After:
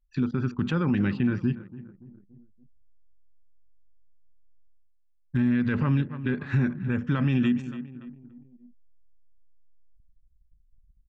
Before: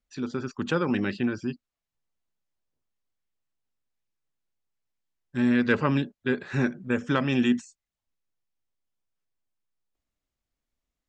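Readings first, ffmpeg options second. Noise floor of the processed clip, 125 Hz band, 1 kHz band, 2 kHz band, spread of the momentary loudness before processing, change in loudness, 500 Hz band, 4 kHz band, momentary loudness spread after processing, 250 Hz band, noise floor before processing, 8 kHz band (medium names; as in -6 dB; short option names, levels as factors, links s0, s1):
-63 dBFS, +6.5 dB, -5.0 dB, -4.5 dB, 10 LU, +0.5 dB, -6.0 dB, -6.0 dB, 15 LU, +0.5 dB, under -85 dBFS, no reading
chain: -filter_complex "[0:a]equalizer=f=520:t=o:w=1.6:g=-6,asplit=2[s0][s1];[s1]acompressor=threshold=0.0141:ratio=6,volume=0.891[s2];[s0][s2]amix=inputs=2:normalize=0,bass=f=250:g=10,treble=f=4000:g=-13,aecho=1:1:285|570|855|1140:0.133|0.0627|0.0295|0.0138,alimiter=limit=0.158:level=0:latency=1:release=62,areverse,acompressor=mode=upward:threshold=0.00631:ratio=2.5,areverse,anlmdn=0.0251"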